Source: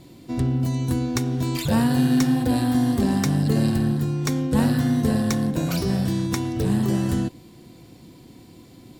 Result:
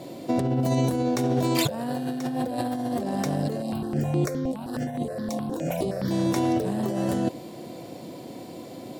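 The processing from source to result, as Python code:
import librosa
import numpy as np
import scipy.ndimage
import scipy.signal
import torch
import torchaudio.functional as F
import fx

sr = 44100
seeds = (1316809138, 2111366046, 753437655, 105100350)

y = scipy.signal.sosfilt(scipy.signal.butter(2, 150.0, 'highpass', fs=sr, output='sos'), x)
y = fx.peak_eq(y, sr, hz=600.0, db=14.5, octaves=0.82)
y = fx.over_compress(y, sr, threshold_db=-26.0, ratio=-1.0)
y = fx.phaser_held(y, sr, hz=9.6, low_hz=410.0, high_hz=5600.0, at=(3.62, 6.11))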